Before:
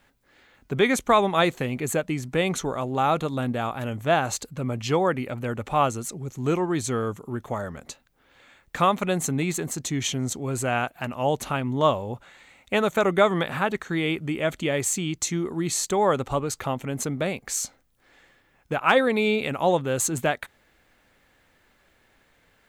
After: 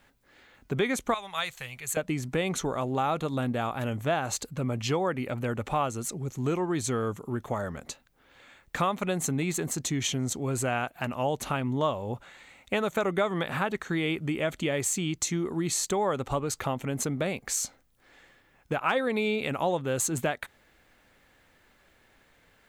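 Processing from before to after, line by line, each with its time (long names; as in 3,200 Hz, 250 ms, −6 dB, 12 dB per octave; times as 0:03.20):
0:01.14–0:01.97: guitar amp tone stack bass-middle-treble 10-0-10
whole clip: downward compressor 2.5 to 1, threshold −26 dBFS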